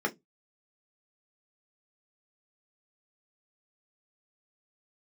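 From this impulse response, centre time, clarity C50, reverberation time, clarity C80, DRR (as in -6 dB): 7 ms, 23.0 dB, 0.15 s, 34.5 dB, 1.5 dB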